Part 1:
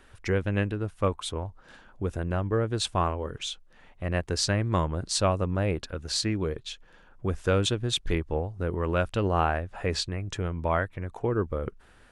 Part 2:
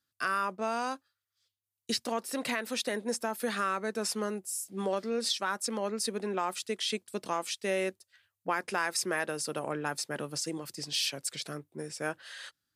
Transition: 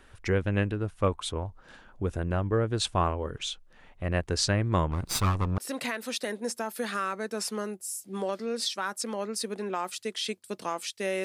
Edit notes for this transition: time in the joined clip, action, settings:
part 1
0:04.91–0:05.58: lower of the sound and its delayed copy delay 0.82 ms
0:05.58: continue with part 2 from 0:02.22

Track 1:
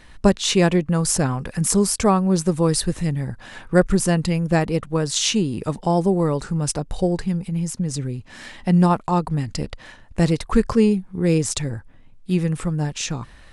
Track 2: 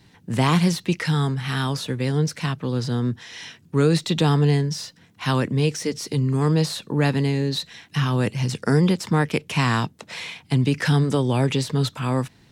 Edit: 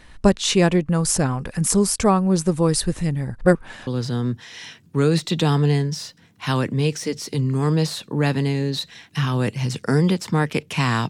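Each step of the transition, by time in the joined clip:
track 1
0:03.41–0:03.87: reverse
0:03.87: continue with track 2 from 0:02.66

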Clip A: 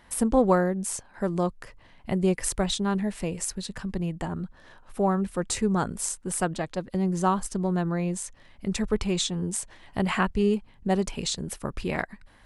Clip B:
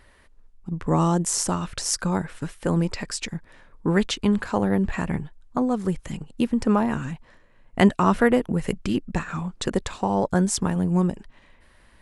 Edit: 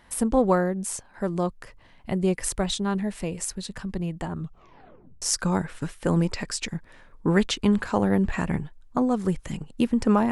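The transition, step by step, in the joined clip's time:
clip A
0:04.34: tape stop 0.88 s
0:05.22: continue with clip B from 0:01.82

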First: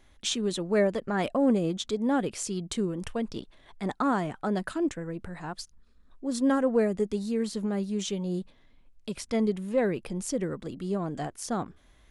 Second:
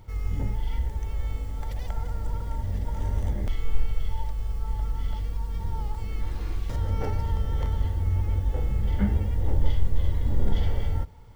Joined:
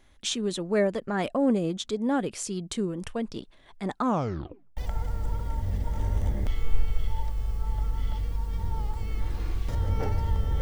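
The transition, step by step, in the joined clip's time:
first
0:04.00: tape stop 0.77 s
0:04.77: continue with second from 0:01.78

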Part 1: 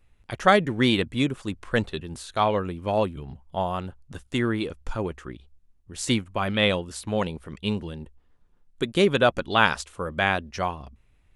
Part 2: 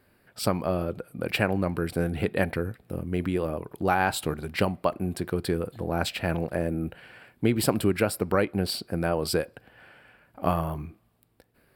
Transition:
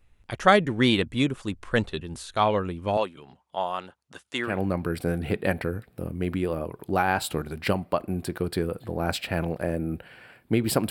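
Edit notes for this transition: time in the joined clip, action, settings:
part 1
0:02.97–0:04.59: meter weighting curve A
0:04.51: continue with part 2 from 0:01.43, crossfade 0.16 s

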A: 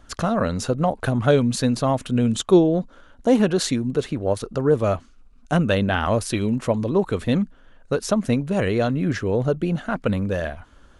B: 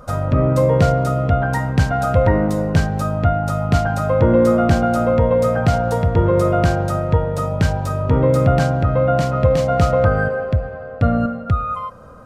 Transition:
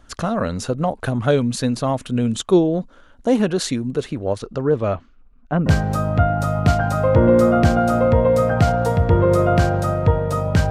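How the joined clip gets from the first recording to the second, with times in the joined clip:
A
0:04.20–0:05.66: low-pass filter 9,400 Hz → 1,400 Hz
0:05.66: continue with B from 0:02.72

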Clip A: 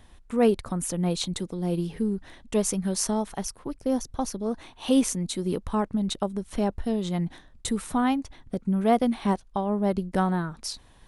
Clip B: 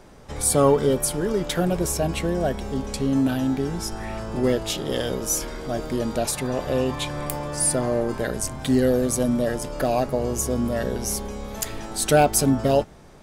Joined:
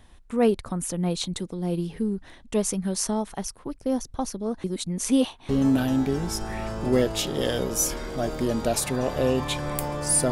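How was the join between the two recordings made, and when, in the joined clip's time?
clip A
0:04.64–0:05.49: reverse
0:05.49: continue with clip B from 0:03.00

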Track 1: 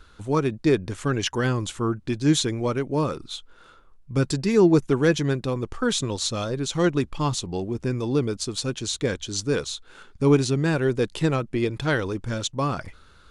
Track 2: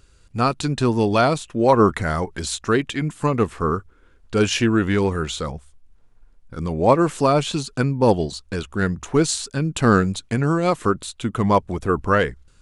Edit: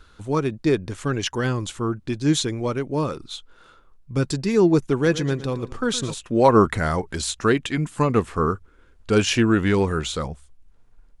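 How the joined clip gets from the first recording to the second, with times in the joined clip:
track 1
0:04.94–0:06.15: repeating echo 115 ms, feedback 36%, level −14.5 dB
0:06.11: continue with track 2 from 0:01.35, crossfade 0.08 s

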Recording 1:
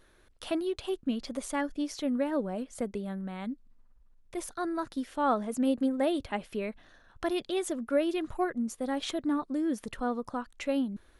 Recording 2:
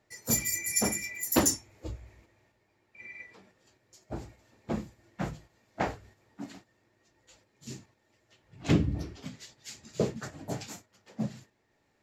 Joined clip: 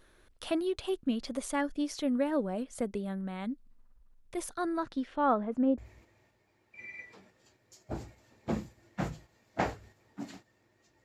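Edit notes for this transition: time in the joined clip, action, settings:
recording 1
0:04.78–0:05.78: low-pass filter 6,400 Hz → 1,000 Hz
0:05.78: continue with recording 2 from 0:01.99

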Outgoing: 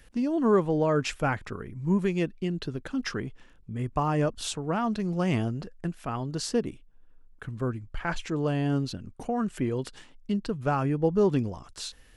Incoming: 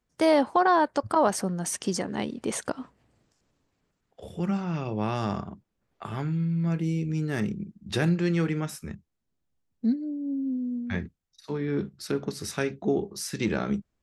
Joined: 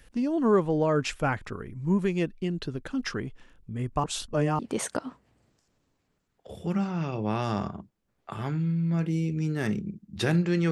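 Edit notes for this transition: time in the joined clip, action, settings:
outgoing
0:04.04–0:04.59: reverse
0:04.59: continue with incoming from 0:02.32

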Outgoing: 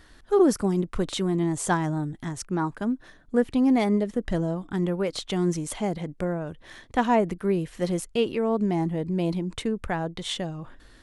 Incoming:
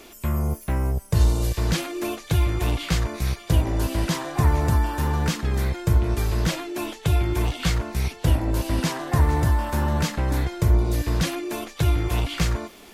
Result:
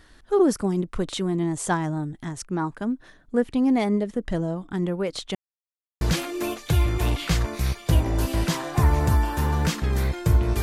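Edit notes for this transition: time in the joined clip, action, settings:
outgoing
0:05.35–0:06.01: silence
0:06.01: continue with incoming from 0:01.62

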